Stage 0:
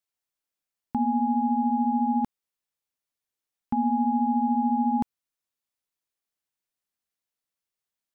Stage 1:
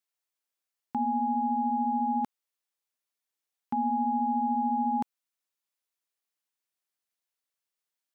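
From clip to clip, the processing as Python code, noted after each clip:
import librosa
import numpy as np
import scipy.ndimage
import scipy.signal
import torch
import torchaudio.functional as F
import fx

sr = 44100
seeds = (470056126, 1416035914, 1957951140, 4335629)

y = fx.highpass(x, sr, hz=430.0, slope=6)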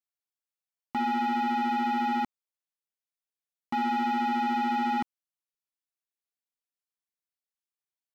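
y = fx.leveller(x, sr, passes=3)
y = y * 10.0 ** (-4.0 / 20.0)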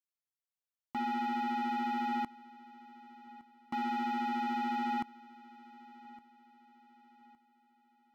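y = fx.echo_feedback(x, sr, ms=1163, feedback_pct=40, wet_db=-20)
y = y * 10.0 ** (-6.5 / 20.0)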